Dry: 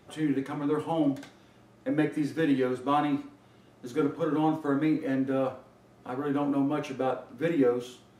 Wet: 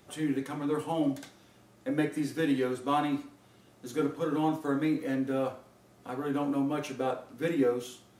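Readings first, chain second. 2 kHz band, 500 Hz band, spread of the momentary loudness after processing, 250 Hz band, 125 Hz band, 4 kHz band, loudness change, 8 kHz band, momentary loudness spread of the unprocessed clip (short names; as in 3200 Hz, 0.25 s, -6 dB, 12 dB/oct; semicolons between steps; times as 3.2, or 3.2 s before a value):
-1.5 dB, -2.5 dB, 9 LU, -2.5 dB, -2.5 dB, +0.5 dB, -2.5 dB, n/a, 8 LU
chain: high shelf 4900 Hz +10 dB; gain -2.5 dB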